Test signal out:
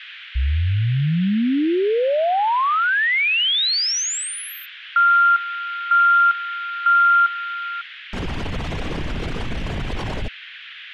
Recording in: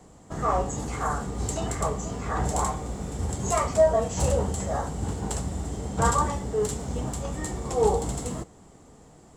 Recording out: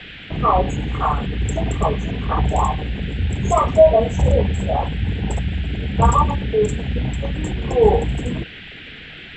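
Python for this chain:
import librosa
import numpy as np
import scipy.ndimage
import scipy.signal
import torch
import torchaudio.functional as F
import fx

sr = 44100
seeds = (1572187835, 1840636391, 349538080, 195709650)

y = fx.envelope_sharpen(x, sr, power=2.0)
y = scipy.signal.sosfilt(scipy.signal.butter(2, 5600.0, 'lowpass', fs=sr, output='sos'), y)
y = fx.dmg_noise_band(y, sr, seeds[0], low_hz=1500.0, high_hz=3400.0, level_db=-47.0)
y = y * 10.0 ** (8.5 / 20.0)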